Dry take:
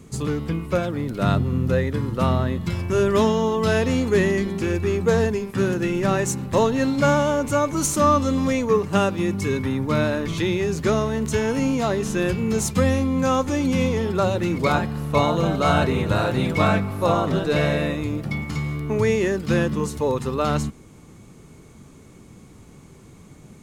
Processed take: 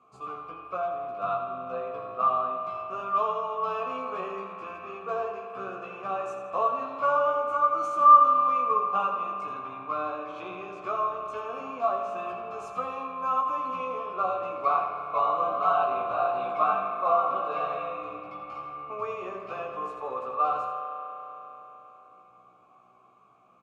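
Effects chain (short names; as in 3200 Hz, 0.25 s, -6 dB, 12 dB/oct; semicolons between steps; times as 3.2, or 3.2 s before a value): vowel filter a; bell 1200 Hz +14 dB 0.59 oct; doubler 16 ms -2.5 dB; feedback echo 82 ms, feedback 47%, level -9.5 dB; spring tank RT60 3.9 s, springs 33 ms, chirp 50 ms, DRR 4.5 dB; gain -4 dB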